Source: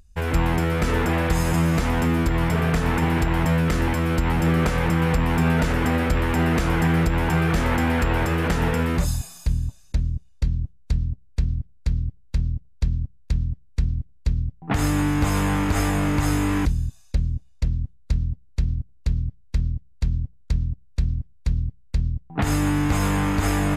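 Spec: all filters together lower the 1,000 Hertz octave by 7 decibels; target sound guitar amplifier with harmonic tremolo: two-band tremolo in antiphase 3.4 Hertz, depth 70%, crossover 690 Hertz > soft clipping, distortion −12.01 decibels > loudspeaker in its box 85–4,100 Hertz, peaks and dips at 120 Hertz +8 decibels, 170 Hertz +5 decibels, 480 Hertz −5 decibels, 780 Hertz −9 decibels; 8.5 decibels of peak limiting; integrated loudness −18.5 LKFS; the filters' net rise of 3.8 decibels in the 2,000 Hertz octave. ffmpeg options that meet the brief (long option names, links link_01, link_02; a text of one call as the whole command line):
ffmpeg -i in.wav -filter_complex "[0:a]equalizer=frequency=1000:width_type=o:gain=-8,equalizer=frequency=2000:width_type=o:gain=7.5,alimiter=limit=-18dB:level=0:latency=1,acrossover=split=690[link_01][link_02];[link_01]aeval=exprs='val(0)*(1-0.7/2+0.7/2*cos(2*PI*3.4*n/s))':channel_layout=same[link_03];[link_02]aeval=exprs='val(0)*(1-0.7/2-0.7/2*cos(2*PI*3.4*n/s))':channel_layout=same[link_04];[link_03][link_04]amix=inputs=2:normalize=0,asoftclip=threshold=-27dB,highpass=85,equalizer=frequency=120:width_type=q:width=4:gain=8,equalizer=frequency=170:width_type=q:width=4:gain=5,equalizer=frequency=480:width_type=q:width=4:gain=-5,equalizer=frequency=780:width_type=q:width=4:gain=-9,lowpass=frequency=4100:width=0.5412,lowpass=frequency=4100:width=1.3066,volume=15dB" out.wav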